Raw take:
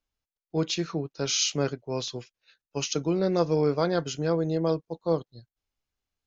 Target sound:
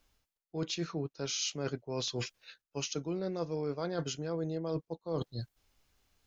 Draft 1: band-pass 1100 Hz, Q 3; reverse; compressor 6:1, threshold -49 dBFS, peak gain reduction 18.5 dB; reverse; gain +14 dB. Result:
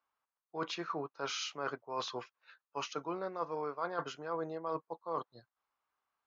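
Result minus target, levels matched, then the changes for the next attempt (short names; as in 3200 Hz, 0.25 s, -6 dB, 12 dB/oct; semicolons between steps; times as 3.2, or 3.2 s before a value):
1000 Hz band +11.0 dB
remove: band-pass 1100 Hz, Q 3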